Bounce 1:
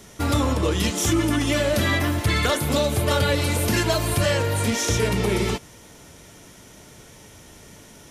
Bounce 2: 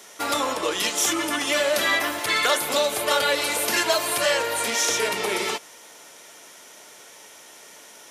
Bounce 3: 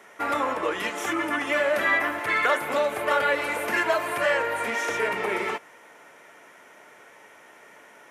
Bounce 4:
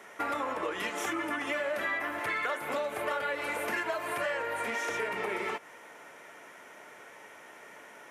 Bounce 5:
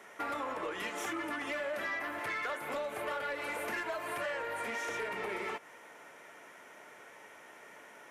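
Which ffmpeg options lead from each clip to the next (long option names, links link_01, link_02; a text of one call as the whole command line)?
ffmpeg -i in.wav -af "highpass=570,volume=3dB" out.wav
ffmpeg -i in.wav -af "highshelf=frequency=2900:width_type=q:width=1.5:gain=-13,volume=-1.5dB" out.wav
ffmpeg -i in.wav -af "acompressor=threshold=-31dB:ratio=4" out.wav
ffmpeg -i in.wav -af "asoftclip=type=tanh:threshold=-25.5dB,volume=-3dB" out.wav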